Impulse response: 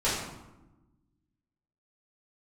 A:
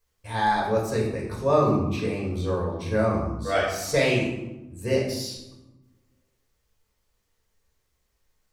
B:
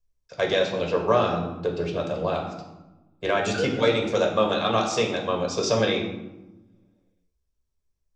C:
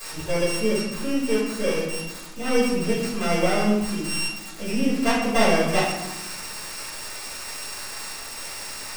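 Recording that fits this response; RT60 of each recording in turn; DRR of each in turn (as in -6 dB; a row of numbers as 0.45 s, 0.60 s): C; 1.0 s, 1.0 s, 1.0 s; -4.5 dB, 1.0 dB, -11.0 dB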